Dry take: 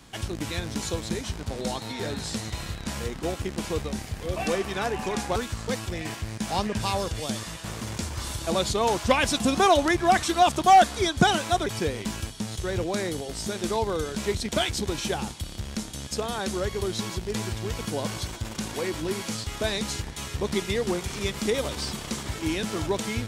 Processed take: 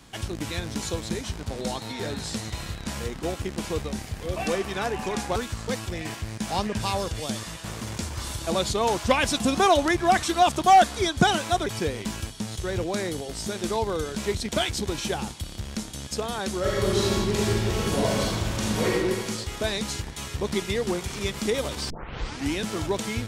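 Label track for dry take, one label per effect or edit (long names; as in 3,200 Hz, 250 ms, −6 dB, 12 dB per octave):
16.600000	18.910000	thrown reverb, RT60 1.6 s, DRR −5.5 dB
21.900000	21.900000	tape start 0.63 s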